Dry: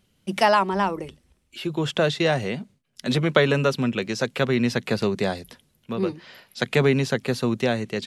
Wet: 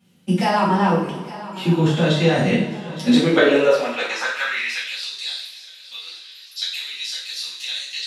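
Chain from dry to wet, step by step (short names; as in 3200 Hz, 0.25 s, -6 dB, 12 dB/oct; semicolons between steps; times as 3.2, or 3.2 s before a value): level quantiser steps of 14 dB; on a send: swung echo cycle 1.438 s, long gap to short 1.5:1, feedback 42%, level -16 dB; on the sum: two-slope reverb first 0.55 s, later 3 s, from -19 dB, DRR -10 dB; high-pass sweep 170 Hz -> 3900 Hz, 3–5.11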